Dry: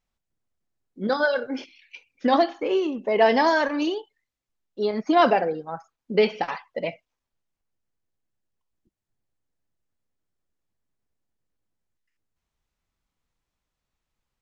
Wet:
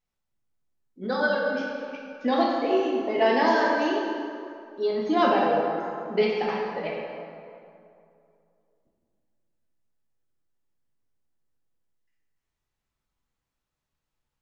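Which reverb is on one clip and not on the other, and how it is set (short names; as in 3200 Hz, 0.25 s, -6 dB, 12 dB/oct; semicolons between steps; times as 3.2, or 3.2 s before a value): plate-style reverb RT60 2.5 s, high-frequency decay 0.6×, DRR -3 dB; gain -6 dB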